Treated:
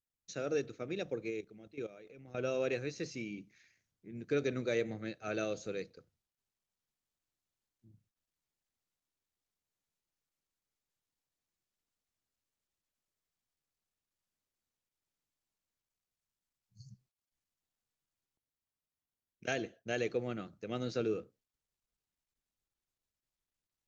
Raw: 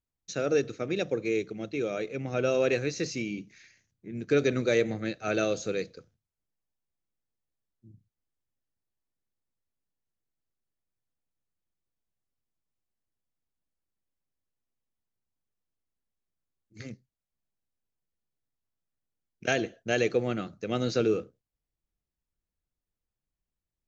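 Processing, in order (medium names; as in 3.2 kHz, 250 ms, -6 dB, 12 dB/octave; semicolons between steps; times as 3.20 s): 1.30–2.38 s: level held to a coarse grid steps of 15 dB; 15.84–17.61 s: spectral selection erased 210–4200 Hz; trim -8.5 dB; Opus 48 kbps 48 kHz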